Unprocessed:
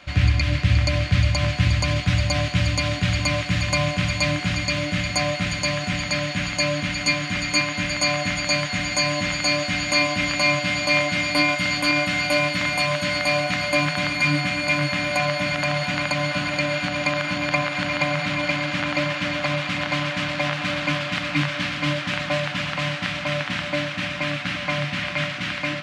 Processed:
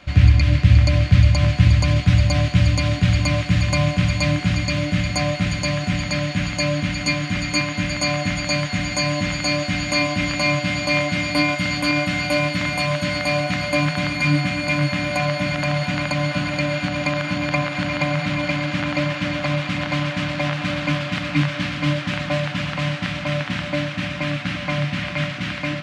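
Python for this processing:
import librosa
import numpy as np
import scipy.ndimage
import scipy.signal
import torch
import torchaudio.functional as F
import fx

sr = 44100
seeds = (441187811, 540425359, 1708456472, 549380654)

y = fx.low_shelf(x, sr, hz=390.0, db=8.0)
y = y * librosa.db_to_amplitude(-1.5)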